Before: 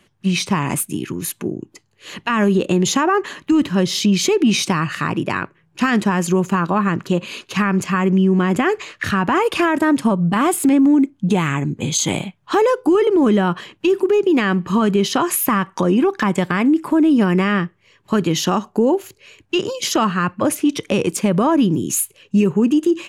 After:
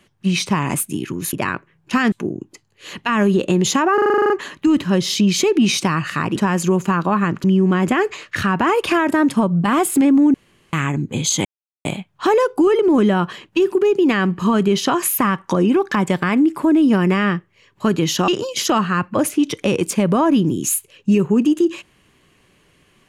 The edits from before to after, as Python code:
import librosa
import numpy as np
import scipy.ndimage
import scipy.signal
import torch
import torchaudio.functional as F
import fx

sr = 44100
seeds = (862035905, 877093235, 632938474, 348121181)

y = fx.edit(x, sr, fx.stutter(start_s=3.15, slice_s=0.04, count=10),
    fx.move(start_s=5.21, length_s=0.79, to_s=1.33),
    fx.cut(start_s=7.08, length_s=1.04),
    fx.room_tone_fill(start_s=11.02, length_s=0.39),
    fx.insert_silence(at_s=12.13, length_s=0.4),
    fx.cut(start_s=18.56, length_s=0.98), tone=tone)